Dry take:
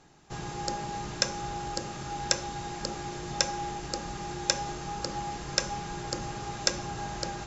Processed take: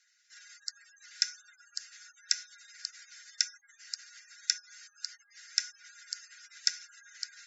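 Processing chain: spectral gate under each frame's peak -25 dB strong; rippled Chebyshev high-pass 1.4 kHz, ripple 9 dB

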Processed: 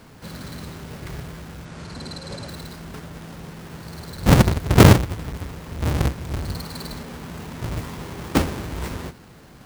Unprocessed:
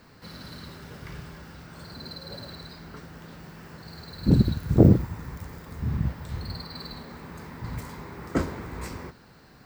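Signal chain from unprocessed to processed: square wave that keeps the level; 1.65–2.49 s: low-pass 8.9 kHz 24 dB/octave; trim +1.5 dB

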